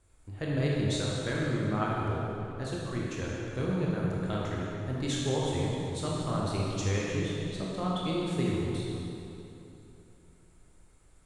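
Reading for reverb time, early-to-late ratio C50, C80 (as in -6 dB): 3.0 s, -2.5 dB, -1.0 dB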